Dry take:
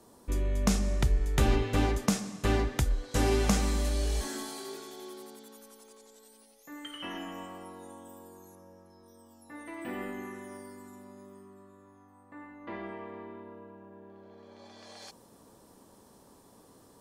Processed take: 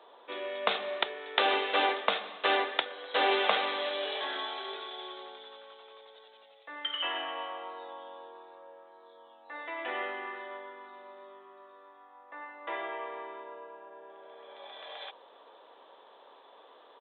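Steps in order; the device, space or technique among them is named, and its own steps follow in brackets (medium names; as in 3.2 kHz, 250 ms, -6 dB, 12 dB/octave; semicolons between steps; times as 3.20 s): musical greeting card (resampled via 8 kHz; high-pass 500 Hz 24 dB/octave; peaking EQ 3.7 kHz +7 dB 0.51 oct); trim +7 dB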